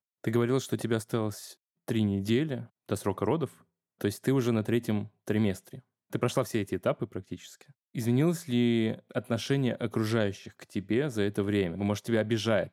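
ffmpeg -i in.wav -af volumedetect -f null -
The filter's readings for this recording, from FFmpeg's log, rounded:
mean_volume: -29.7 dB
max_volume: -12.5 dB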